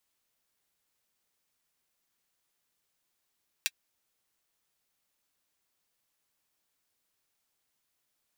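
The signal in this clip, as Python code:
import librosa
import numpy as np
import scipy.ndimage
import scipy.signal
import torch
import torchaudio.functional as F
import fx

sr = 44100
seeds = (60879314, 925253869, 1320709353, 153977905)

y = fx.drum_hat(sr, length_s=0.24, from_hz=2300.0, decay_s=0.05)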